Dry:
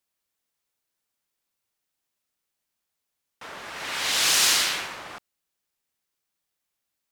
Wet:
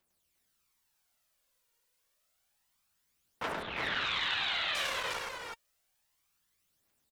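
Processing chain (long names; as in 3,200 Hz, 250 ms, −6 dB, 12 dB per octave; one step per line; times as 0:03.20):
downward compressor 5 to 1, threshold −32 dBFS, peak gain reduction 14 dB
0:03.52–0:04.75: elliptic low-pass filter 3,800 Hz
phase shifter 0.29 Hz, delay 2.2 ms, feedback 67%
multi-tap delay 104/354 ms −3.5/−4.5 dB
saturating transformer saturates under 1,400 Hz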